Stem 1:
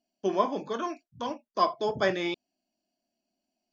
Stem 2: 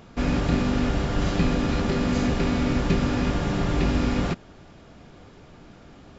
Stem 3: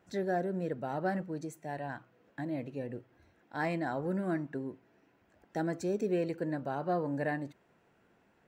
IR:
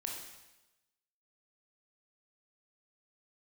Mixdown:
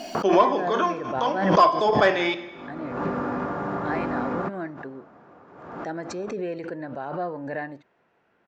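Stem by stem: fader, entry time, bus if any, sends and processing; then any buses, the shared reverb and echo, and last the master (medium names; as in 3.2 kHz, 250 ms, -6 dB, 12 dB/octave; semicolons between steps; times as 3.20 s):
+3.0 dB, 0.00 s, send -6.5 dB, hum notches 60/120/180/240/300/360/420 Hz
-3.5 dB, 0.15 s, no send, high-pass 140 Hz 12 dB/octave; resonant high shelf 1.9 kHz -14 dB, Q 1.5; auto duck -23 dB, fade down 0.30 s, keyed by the first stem
-1.0 dB, 0.30 s, no send, low-pass 6.7 kHz 24 dB/octave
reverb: on, RT60 1.0 s, pre-delay 18 ms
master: overdrive pedal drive 11 dB, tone 2 kHz, clips at -5.5 dBFS; swell ahead of each attack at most 52 dB/s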